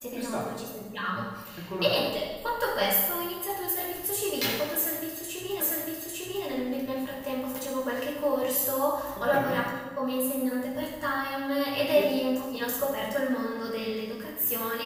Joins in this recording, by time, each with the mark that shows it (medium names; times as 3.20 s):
5.60 s: repeat of the last 0.85 s